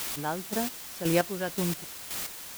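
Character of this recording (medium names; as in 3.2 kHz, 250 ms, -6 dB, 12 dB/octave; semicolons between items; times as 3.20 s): a quantiser's noise floor 6-bit, dither triangular; chopped level 1.9 Hz, depth 60%, duty 30%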